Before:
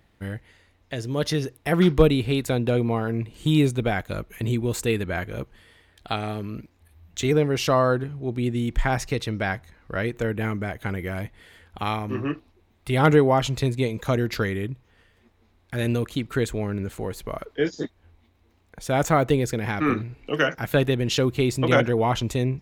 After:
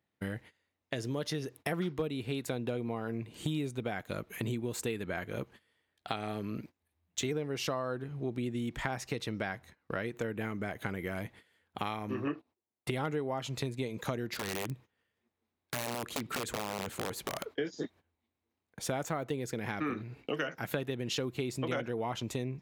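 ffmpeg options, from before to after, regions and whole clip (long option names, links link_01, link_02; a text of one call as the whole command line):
ffmpeg -i in.wav -filter_complex "[0:a]asettb=1/sr,asplit=3[link_01][link_02][link_03];[link_01]atrim=end=12.274[link_04];[link_02]atrim=start=12.27:end=12.91,asetpts=PTS-STARTPTS,afade=type=in:duration=0.004:curve=qsin,afade=type=out:start_time=0.636:duration=0.004:curve=qsin,agate=range=-17dB:threshold=-48dB:ratio=16:release=100:detection=peak,equalizer=frequency=630:width=0.35:gain=8.5[link_05];[link_03]atrim=start=12.906[link_06];[link_04][link_05]acrossfade=duration=0.004:curve1=hsin:curve2=qsin[link_07];[link_07][link_06]acrossfade=duration=0.004:curve1=qsin:curve2=hsin,asettb=1/sr,asplit=3[link_08][link_09][link_10];[link_08]atrim=end=14.354[link_11];[link_09]atrim=start=14.35:end=17.54,asetpts=PTS-STARTPTS,afade=type=in:duration=0.004:curve=qsin,afade=type=out:start_time=3.186:duration=0.004:curve=qsin,acompressor=threshold=-27dB:ratio=10:attack=3.2:release=140:knee=1:detection=peak,aeval=exprs='(mod(18.8*val(0)+1,2)-1)/18.8':channel_layout=same[link_12];[link_10]atrim=start=17.536[link_13];[link_11][link_12]acrossfade=duration=0.004:curve1=hsin:curve2=qsin[link_14];[link_14][link_13]acrossfade=duration=0.004:curve1=qsin:curve2=hsin,agate=range=-20dB:threshold=-45dB:ratio=16:detection=peak,highpass=130,acompressor=threshold=-32dB:ratio=6" out.wav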